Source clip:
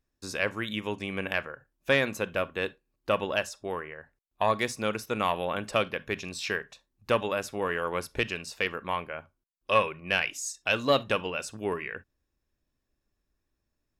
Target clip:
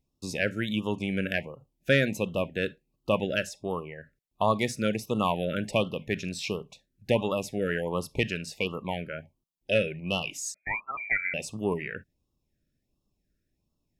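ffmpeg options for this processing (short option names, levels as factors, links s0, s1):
-filter_complex "[0:a]equalizer=f=160:t=o:w=1.4:g=9,asettb=1/sr,asplit=3[s0][s1][s2];[s0]atrim=end=10.544[s3];[s1]atrim=start=10.54:end=11.34,asetpts=PTS-STARTPTS,afade=t=in:d=0.004:c=qsin,afade=t=out:st=0.796:d=0.004:c=qsin,lowpass=f=2100:t=q:w=0.5098,lowpass=f=2100:t=q:w=0.6013,lowpass=f=2100:t=q:w=0.9,lowpass=f=2100:t=q:w=2.563,afreqshift=-2500[s4];[s2]atrim=start=11.336[s5];[s3][s4]acrossfade=d=0.004:c1=hsin:c2=qsin[s6];[s6][s5]acrossfade=d=0.004:c1=qsin:c2=hsin,afftfilt=real='re*(1-between(b*sr/1024,900*pow(1900/900,0.5+0.5*sin(2*PI*1.4*pts/sr))/1.41,900*pow(1900/900,0.5+0.5*sin(2*PI*1.4*pts/sr))*1.41))':imag='im*(1-between(b*sr/1024,900*pow(1900/900,0.5+0.5*sin(2*PI*1.4*pts/sr))/1.41,900*pow(1900/900,0.5+0.5*sin(2*PI*1.4*pts/sr))*1.41))':win_size=1024:overlap=0.75"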